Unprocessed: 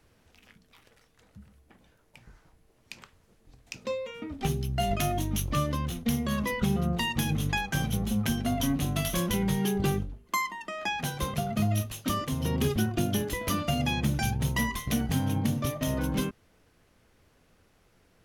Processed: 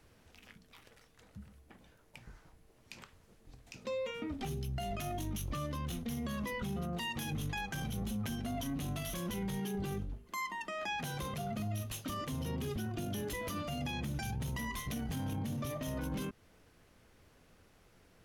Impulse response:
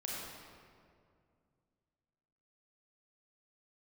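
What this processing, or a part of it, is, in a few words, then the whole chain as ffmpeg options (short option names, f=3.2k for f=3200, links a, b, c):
stacked limiters: -filter_complex "[0:a]asettb=1/sr,asplit=3[a][b][c];[a]atrim=end=6.824[d];[b]atrim=start=6.82:end=7.33,asetpts=PTS-STARTPTS,afade=t=in:d=0.004:c=qsin,afade=t=out:st=0.506:d=0.004:c=qsin,lowshelf=f=140:g=-9[e];[c]atrim=start=7.326[f];[d][e]acrossfade=d=0.004:c1=hsin:c2=qsin[g];[g][f]acrossfade=d=0.004:c1=qsin:c2=hsin,alimiter=limit=-21.5dB:level=0:latency=1:release=272,alimiter=level_in=3dB:limit=-24dB:level=0:latency=1:release=11,volume=-3dB,alimiter=level_in=6.5dB:limit=-24dB:level=0:latency=1:release=79,volume=-6.5dB"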